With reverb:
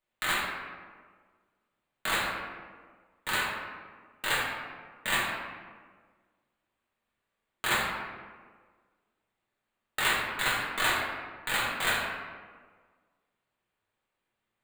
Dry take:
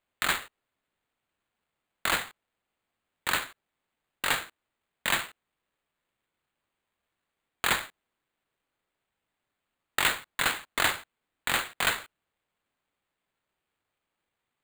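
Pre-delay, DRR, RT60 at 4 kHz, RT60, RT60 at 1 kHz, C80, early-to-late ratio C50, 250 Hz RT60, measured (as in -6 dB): 5 ms, -6.5 dB, 0.85 s, 1.6 s, 1.5 s, 3.0 dB, 0.5 dB, 1.7 s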